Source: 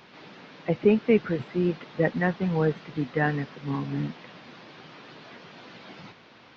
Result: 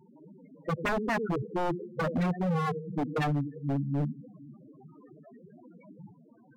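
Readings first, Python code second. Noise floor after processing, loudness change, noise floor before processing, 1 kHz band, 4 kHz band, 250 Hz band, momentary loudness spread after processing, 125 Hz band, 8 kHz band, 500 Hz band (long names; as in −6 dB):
−58 dBFS, −4.5 dB, −53 dBFS, +1.5 dB, −4.0 dB, −5.0 dB, 15 LU, −2.0 dB, can't be measured, −7.5 dB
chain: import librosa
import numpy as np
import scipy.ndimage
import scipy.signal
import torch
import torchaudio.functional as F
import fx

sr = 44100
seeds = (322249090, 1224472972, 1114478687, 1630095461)

p1 = fx.high_shelf(x, sr, hz=2400.0, db=-3.5)
p2 = fx.echo_feedback(p1, sr, ms=467, feedback_pct=36, wet_db=-20.5)
p3 = fx.level_steps(p2, sr, step_db=14)
p4 = p2 + (p3 * librosa.db_to_amplitude(-3.0))
p5 = fx.echo_thinned(p4, sr, ms=95, feedback_pct=58, hz=150.0, wet_db=-14.5)
p6 = fx.spec_topn(p5, sr, count=4)
y = 10.0 ** (-23.0 / 20.0) * (np.abs((p6 / 10.0 ** (-23.0 / 20.0) + 3.0) % 4.0 - 2.0) - 1.0)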